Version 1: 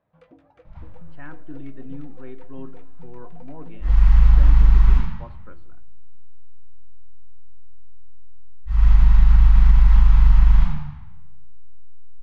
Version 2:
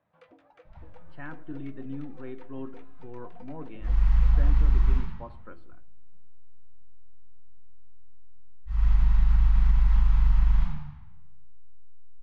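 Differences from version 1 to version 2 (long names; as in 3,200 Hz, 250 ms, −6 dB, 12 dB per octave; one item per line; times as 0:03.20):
first sound: add meter weighting curve A
second sound −8.0 dB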